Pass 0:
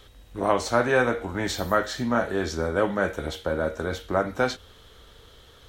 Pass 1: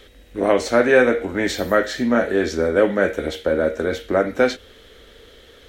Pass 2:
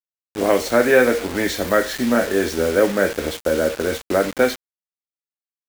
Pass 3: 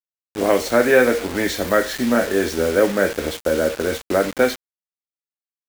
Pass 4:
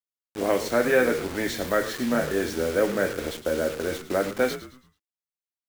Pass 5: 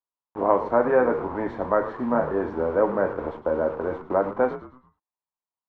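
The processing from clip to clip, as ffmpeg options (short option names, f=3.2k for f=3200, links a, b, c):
-af "equalizer=f=125:t=o:w=1:g=-7,equalizer=f=250:t=o:w=1:g=6,equalizer=f=500:t=o:w=1:g=7,equalizer=f=1k:t=o:w=1:g=-7,equalizer=f=2k:t=o:w=1:g=8,volume=2dB"
-af "acrusher=bits=4:mix=0:aa=0.000001"
-af anull
-filter_complex "[0:a]asplit=5[a][b][c][d][e];[b]adelay=109,afreqshift=-84,volume=-13dB[f];[c]adelay=218,afreqshift=-168,volume=-21.9dB[g];[d]adelay=327,afreqshift=-252,volume=-30.7dB[h];[e]adelay=436,afreqshift=-336,volume=-39.6dB[i];[a][f][g][h][i]amix=inputs=5:normalize=0,volume=-6.5dB"
-af "lowpass=f=980:t=q:w=4.9,volume=-1dB"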